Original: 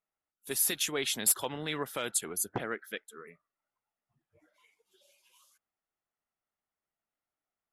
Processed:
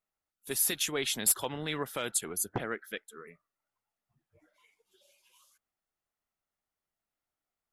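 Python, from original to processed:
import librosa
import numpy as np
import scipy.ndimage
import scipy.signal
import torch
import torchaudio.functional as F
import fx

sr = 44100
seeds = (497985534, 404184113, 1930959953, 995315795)

y = fx.low_shelf(x, sr, hz=84.0, db=8.0)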